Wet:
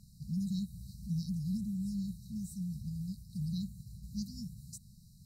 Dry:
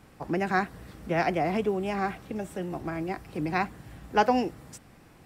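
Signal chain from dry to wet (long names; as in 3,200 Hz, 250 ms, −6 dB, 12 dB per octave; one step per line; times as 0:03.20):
dynamic equaliser 5,000 Hz, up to −7 dB, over −56 dBFS, Q 2.2
0:03.16–0:04.03: downward expander −42 dBFS
linear-phase brick-wall band-stop 220–3,800 Hz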